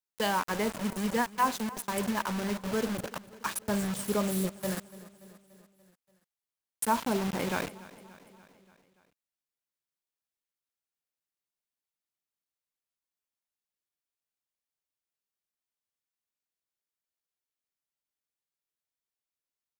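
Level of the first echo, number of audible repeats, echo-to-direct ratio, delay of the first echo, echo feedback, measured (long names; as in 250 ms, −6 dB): −19.0 dB, 4, −17.0 dB, 289 ms, 60%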